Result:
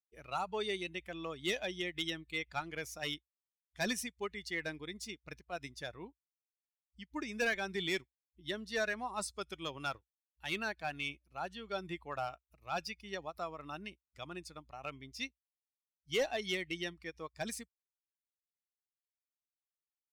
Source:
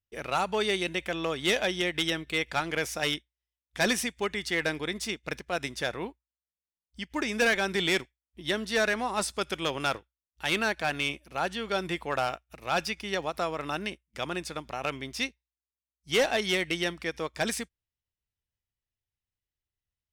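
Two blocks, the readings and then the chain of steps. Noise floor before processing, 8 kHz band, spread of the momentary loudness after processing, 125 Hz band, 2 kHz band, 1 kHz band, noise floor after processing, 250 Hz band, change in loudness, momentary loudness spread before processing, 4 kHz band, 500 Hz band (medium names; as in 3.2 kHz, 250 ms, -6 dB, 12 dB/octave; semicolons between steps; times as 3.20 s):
under -85 dBFS, -10.0 dB, 11 LU, -10.0 dB, -10.0 dB, -9.5 dB, under -85 dBFS, -10.0 dB, -9.5 dB, 9 LU, -10.0 dB, -10.0 dB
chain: expander on every frequency bin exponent 1.5; trim -6.5 dB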